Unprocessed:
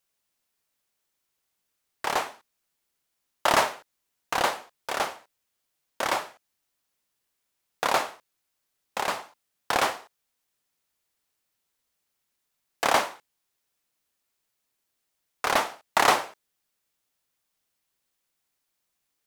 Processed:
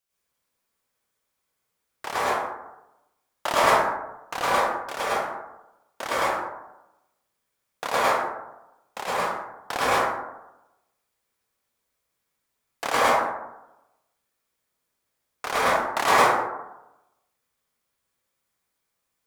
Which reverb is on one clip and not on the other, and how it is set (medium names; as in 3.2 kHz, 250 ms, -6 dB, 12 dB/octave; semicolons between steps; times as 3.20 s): plate-style reverb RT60 0.95 s, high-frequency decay 0.3×, pre-delay 90 ms, DRR -8.5 dB; trim -5.5 dB